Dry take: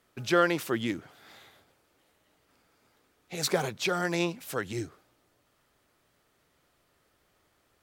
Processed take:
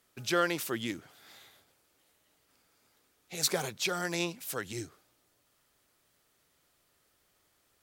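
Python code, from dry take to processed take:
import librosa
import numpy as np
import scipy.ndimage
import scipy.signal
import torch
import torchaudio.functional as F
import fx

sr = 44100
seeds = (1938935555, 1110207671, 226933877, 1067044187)

y = fx.high_shelf(x, sr, hz=3400.0, db=10.0)
y = y * librosa.db_to_amplitude(-5.5)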